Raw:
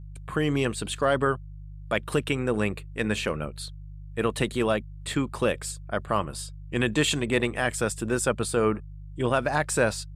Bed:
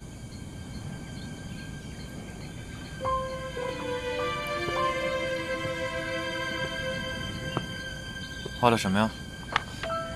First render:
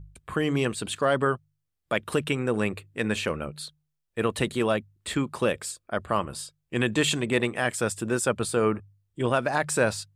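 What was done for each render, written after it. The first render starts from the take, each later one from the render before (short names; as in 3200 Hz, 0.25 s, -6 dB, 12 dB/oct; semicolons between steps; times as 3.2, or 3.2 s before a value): de-hum 50 Hz, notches 3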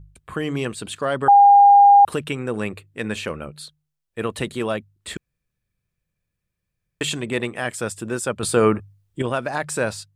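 1.28–2.05 bleep 807 Hz -7 dBFS; 5.17–7.01 room tone; 8.43–9.22 gain +7 dB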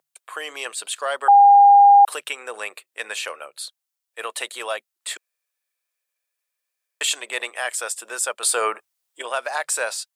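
HPF 580 Hz 24 dB/oct; high shelf 4100 Hz +8 dB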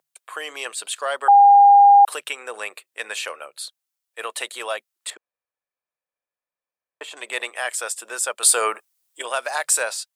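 5.1–7.17 EQ curve 950 Hz 0 dB, 1600 Hz -8 dB, 6200 Hz -21 dB; 8.37–9.83 high shelf 4700 Hz +7 dB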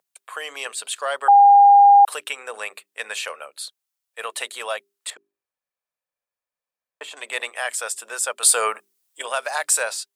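bell 340 Hz -9 dB 0.27 oct; notches 50/100/150/200/250/300/350/400 Hz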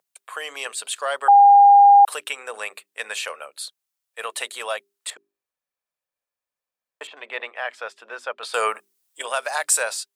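7.07–8.54 air absorption 290 m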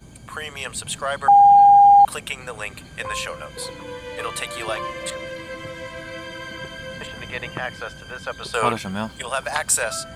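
add bed -2.5 dB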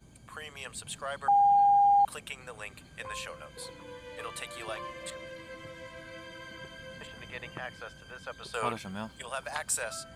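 gain -11.5 dB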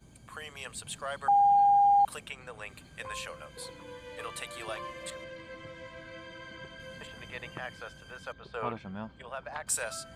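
2.26–2.69 high shelf 7300 Hz -11.5 dB; 5.24–6.8 air absorption 64 m; 8.32–9.67 tape spacing loss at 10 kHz 29 dB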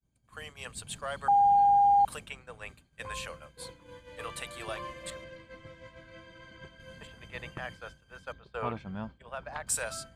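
expander -40 dBFS; low shelf 120 Hz +8 dB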